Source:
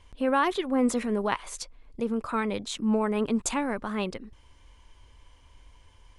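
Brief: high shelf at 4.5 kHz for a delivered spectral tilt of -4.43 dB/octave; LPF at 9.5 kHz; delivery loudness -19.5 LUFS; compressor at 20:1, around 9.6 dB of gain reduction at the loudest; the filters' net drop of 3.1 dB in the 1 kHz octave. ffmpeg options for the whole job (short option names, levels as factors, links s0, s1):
-af "lowpass=9500,equalizer=f=1000:t=o:g=-3.5,highshelf=f=4500:g=-5.5,acompressor=threshold=0.0316:ratio=20,volume=7.08"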